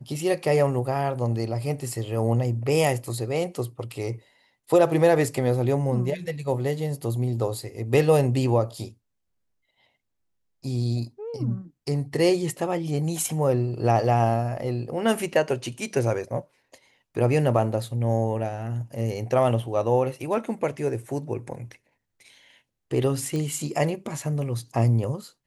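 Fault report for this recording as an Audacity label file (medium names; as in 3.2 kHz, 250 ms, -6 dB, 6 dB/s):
23.360000	23.360000	pop -19 dBFS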